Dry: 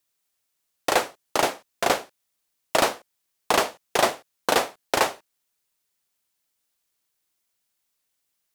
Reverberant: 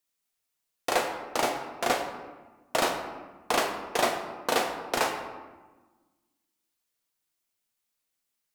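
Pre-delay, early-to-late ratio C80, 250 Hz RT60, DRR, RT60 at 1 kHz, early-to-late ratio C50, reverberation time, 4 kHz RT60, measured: 4 ms, 7.5 dB, 1.9 s, 2.5 dB, 1.2 s, 6.0 dB, 1.3 s, 0.75 s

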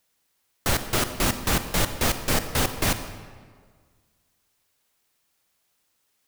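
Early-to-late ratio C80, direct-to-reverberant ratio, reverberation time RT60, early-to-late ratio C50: 11.0 dB, 9.0 dB, 1.7 s, 10.0 dB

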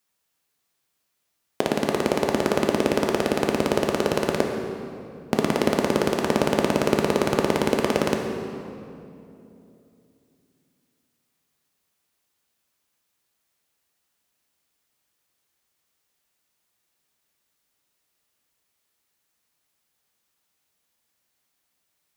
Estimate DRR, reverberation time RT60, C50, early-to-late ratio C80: 2.0 dB, 2.8 s, 4.0 dB, 5.0 dB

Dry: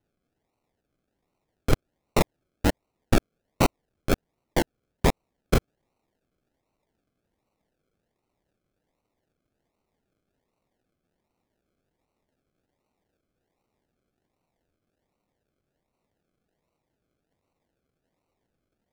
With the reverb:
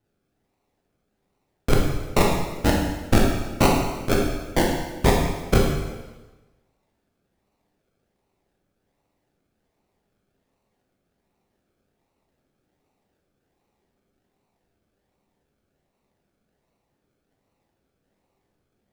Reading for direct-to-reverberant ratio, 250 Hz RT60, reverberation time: -1.5 dB, 1.2 s, 1.2 s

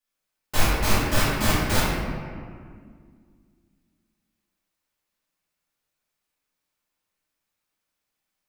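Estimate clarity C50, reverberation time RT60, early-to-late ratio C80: -2.5 dB, 2.0 s, 0.5 dB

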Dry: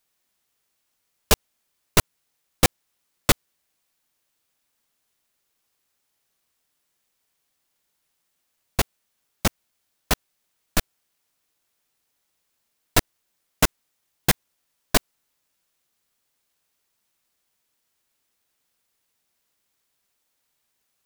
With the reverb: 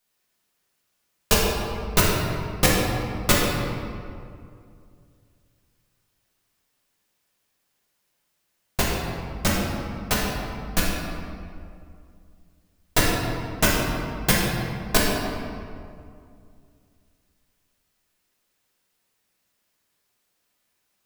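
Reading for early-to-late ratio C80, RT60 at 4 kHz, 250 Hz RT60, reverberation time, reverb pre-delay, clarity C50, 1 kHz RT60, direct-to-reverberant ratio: 1.5 dB, 1.3 s, 2.7 s, 2.3 s, 3 ms, -1.0 dB, 2.2 s, -5.0 dB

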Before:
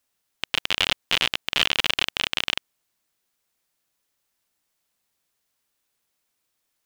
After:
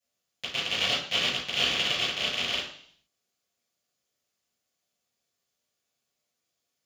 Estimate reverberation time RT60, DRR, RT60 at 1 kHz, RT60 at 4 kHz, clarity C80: 0.60 s, -12.5 dB, 0.60 s, 0.70 s, 9.0 dB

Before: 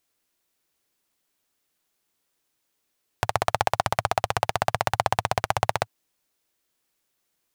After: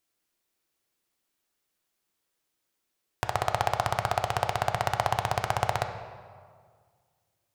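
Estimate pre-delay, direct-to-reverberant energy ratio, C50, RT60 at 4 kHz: 3 ms, 6.0 dB, 8.0 dB, 1.2 s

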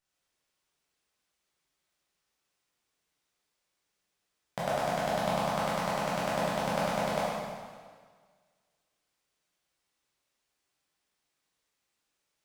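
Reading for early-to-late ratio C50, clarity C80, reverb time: -2.5 dB, 0.0 dB, 1.7 s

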